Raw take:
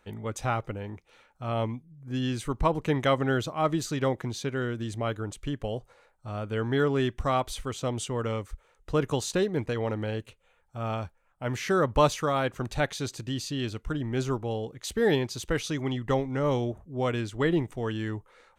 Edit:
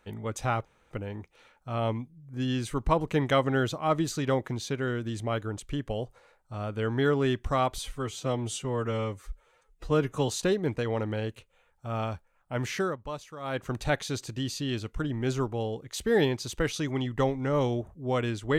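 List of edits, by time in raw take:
0.65 s: insert room tone 0.26 s
7.52–9.19 s: stretch 1.5×
11.63–12.55 s: dip -15.5 dB, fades 0.25 s

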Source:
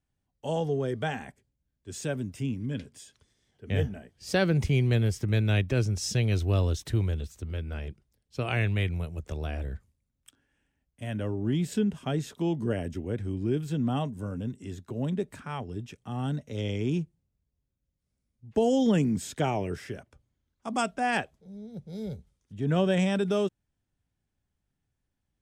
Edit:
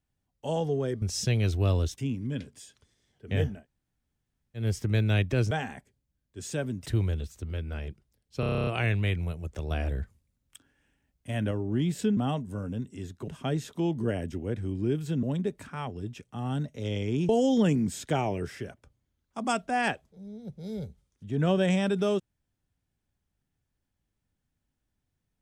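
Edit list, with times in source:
1.02–2.37 s: swap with 5.90–6.86 s
3.98–5.01 s: room tone, crossfade 0.16 s
8.40 s: stutter 0.03 s, 10 plays
9.44–11.24 s: gain +3.5 dB
13.85–14.96 s: move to 11.90 s
17.02–18.58 s: delete

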